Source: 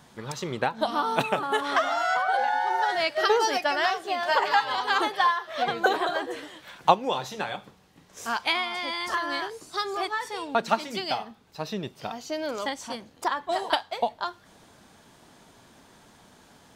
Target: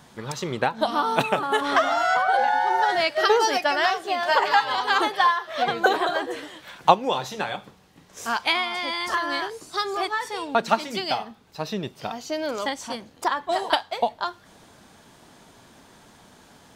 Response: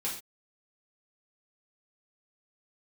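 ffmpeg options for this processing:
-filter_complex "[0:a]asettb=1/sr,asplit=3[a][b][c];[a]atrim=end=1.614[d];[b]atrim=start=1.61:end=3.01,asetpts=PTS-STARTPTS,afade=t=in:d=0.004:c=qsin,afade=t=out:st=1.396:d=0.004:c=qsin,lowshelf=f=360:g=6[e];[c]atrim=start=3.006[f];[d][e]acrossfade=d=0.004:c1=hsin:c2=qsin[g];[g][f]acrossfade=d=0.004:c1=qsin:c2=hsin,volume=3dB"

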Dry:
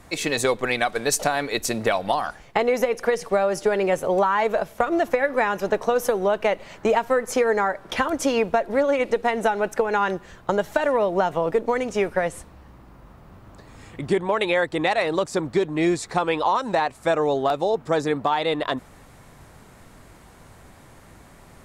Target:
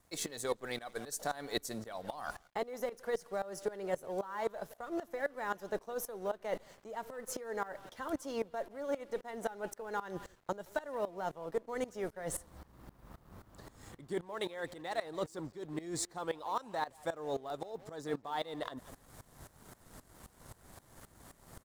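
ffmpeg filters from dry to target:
-filter_complex "[0:a]equalizer=f=2.5k:t=o:w=0.37:g=-11.5,areverse,acompressor=threshold=-30dB:ratio=6,areverse,asplit=2[a][b];[b]adelay=170,highpass=300,lowpass=3.4k,asoftclip=type=hard:threshold=-30dB,volume=-15dB[c];[a][c]amix=inputs=2:normalize=0,aeval=exprs='sgn(val(0))*max(abs(val(0))-0.00158,0)':c=same,crystalizer=i=1:c=0,aeval=exprs='val(0)*pow(10,-18*if(lt(mod(-3.8*n/s,1),2*abs(-3.8)/1000),1-mod(-3.8*n/s,1)/(2*abs(-3.8)/1000),(mod(-3.8*n/s,1)-2*abs(-3.8)/1000)/(1-2*abs(-3.8)/1000))/20)':c=same"

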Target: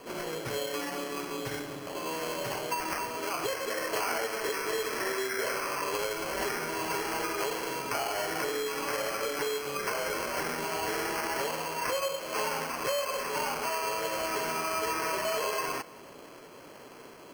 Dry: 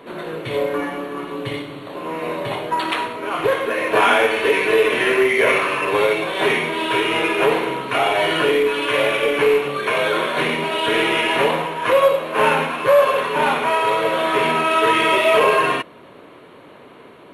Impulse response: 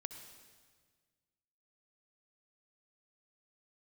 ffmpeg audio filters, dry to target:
-filter_complex "[0:a]acrusher=samples=12:mix=1:aa=0.000001,acrossover=split=1600|4600[a][b][c];[a]acompressor=threshold=-27dB:ratio=4[d];[b]acompressor=threshold=-35dB:ratio=4[e];[c]acompressor=threshold=-34dB:ratio=4[f];[d][e][f]amix=inputs=3:normalize=0,asplit=2[g][h];[h]highpass=300[i];[1:a]atrim=start_sample=2205[j];[i][j]afir=irnorm=-1:irlink=0,volume=-7dB[k];[g][k]amix=inputs=2:normalize=0,volume=-7dB"

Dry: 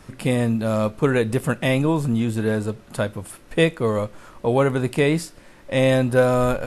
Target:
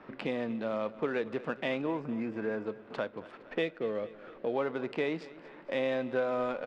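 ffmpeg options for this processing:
-filter_complex "[0:a]asettb=1/sr,asplit=3[a][b][c];[a]atrim=end=1.864[d];[b]atrim=start=1.86:end=2.66,asetpts=PTS-STARTPTS,afade=t=in:d=0.004:c=qsin,afade=t=out:st=0.796:d=0.004:c=qsin,asuperstop=centerf=3500:order=20:qfactor=1.8[e];[c]atrim=start=2.656[f];[d][e]acrossfade=d=0.004:c1=hsin:c2=qsin[g];[g][f]acrossfade=d=0.004:c1=qsin:c2=hsin,asettb=1/sr,asplit=3[h][i][j];[h]atrim=end=3.624[k];[i]atrim=start=3.62:end=4.54,asetpts=PTS-STARTPTS,afade=t=in:d=0.004:c=qsin,afade=t=out:st=0.916:d=0.004:c=qsin,equalizer=f=990:t=o:w=0.47:g=-13.5[l];[j]atrim=start=4.536[m];[k][l]acrossfade=d=0.004:c1=hsin:c2=qsin[n];[n][m]acrossfade=d=0.004:c1=qsin:c2=hsin,adynamicsmooth=sensitivity=7:basefreq=2k,lowpass=6.1k,acrossover=split=220 4800:gain=0.0631 1 0.178[o][p][q];[o][p][q]amix=inputs=3:normalize=0,acompressor=threshold=-38dB:ratio=2,aecho=1:1:231|462|693|924|1155:0.126|0.068|0.0367|0.0198|0.0107"

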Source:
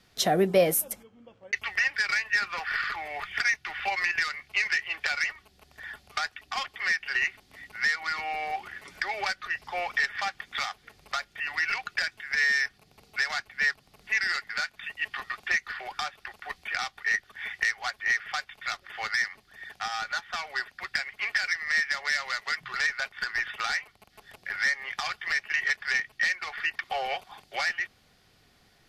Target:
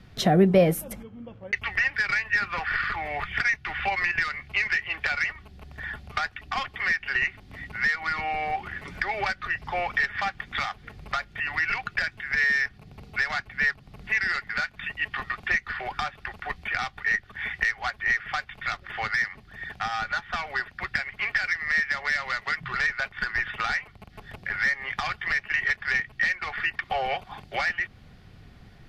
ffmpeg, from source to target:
-filter_complex "[0:a]bass=f=250:g=12,treble=f=4k:g=-11,asplit=2[a][b];[b]acompressor=threshold=-36dB:ratio=6,volume=1dB[c];[a][c]amix=inputs=2:normalize=0"

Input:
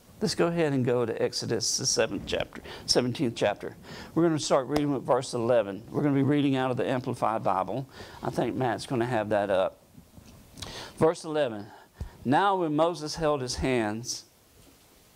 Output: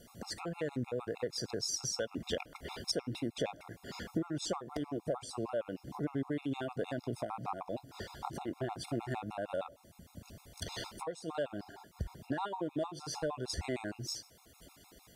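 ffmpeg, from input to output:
-af "acompressor=threshold=-32dB:ratio=6,afftfilt=real='re*gt(sin(2*PI*6.5*pts/sr)*(1-2*mod(floor(b*sr/1024/700),2)),0)':imag='im*gt(sin(2*PI*6.5*pts/sr)*(1-2*mod(floor(b*sr/1024/700),2)),0)':win_size=1024:overlap=0.75,volume=1dB"

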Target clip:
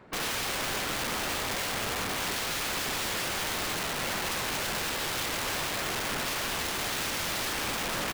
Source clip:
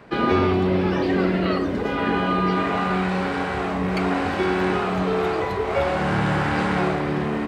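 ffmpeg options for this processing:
-filter_complex "[0:a]asplit=2[a][b];[b]aecho=0:1:495|990|1485|1980|2475:0.299|0.131|0.0578|0.0254|0.0112[c];[a][c]amix=inputs=2:normalize=0,asetrate=40517,aresample=44100,equalizer=f=140:t=o:w=0.35:g=-2.5,asplit=2[d][e];[e]aecho=0:1:228|332|339|846:0.398|0.501|0.158|0.133[f];[d][f]amix=inputs=2:normalize=0,aeval=exprs='(mod(10.6*val(0)+1,2)-1)/10.6':c=same,volume=-6.5dB"

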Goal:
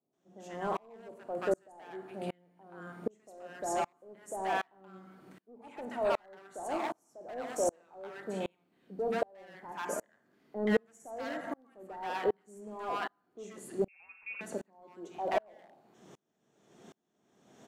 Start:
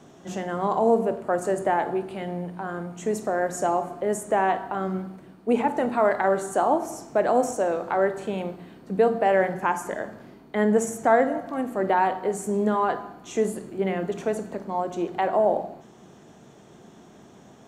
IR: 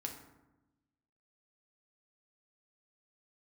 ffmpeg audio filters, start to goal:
-filter_complex "[0:a]highpass=f=250:p=1,asplit=2[a][b];[b]aeval=exprs='0.0891*(abs(mod(val(0)/0.0891+3,4)-2)-1)':c=same,volume=-4.5dB[c];[a][c]amix=inputs=2:normalize=0,acrossover=split=930[d][e];[e]adelay=130[f];[d][f]amix=inputs=2:normalize=0,asettb=1/sr,asplit=3[g][h][i];[g]atrim=end=13.884[j];[h]atrim=start=13.88:end=14.41,asetpts=PTS-STARTPTS,afade=t=in:d=0.004:c=qsin,afade=t=out:st=0.526:d=0.004:c=qsin,lowpass=f=2.5k:t=q:w=0.5098,lowpass=f=2.5k:t=q:w=0.6013,lowpass=f=2.5k:t=q:w=0.9,lowpass=f=2.5k:t=q:w=2.563,afreqshift=-2900[k];[i]atrim=start=14.406[l];[j][k]acrossfade=d=0.004:c1=hsin:c2=qsin[m];[m][l]acrossfade=d=0.004:c1=qsin:c2=hsin,aeval=exprs='val(0)*pow(10,-36*if(lt(mod(-1.3*n/s,1),2*abs(-1.3)/1000),1-mod(-1.3*n/s,1)/(2*abs(-1.3)/1000),(mod(-1.3*n/s,1)-2*abs(-1.3)/1000)/(1-2*abs(-1.3)/1000))/20)':c=same,volume=-4dB"

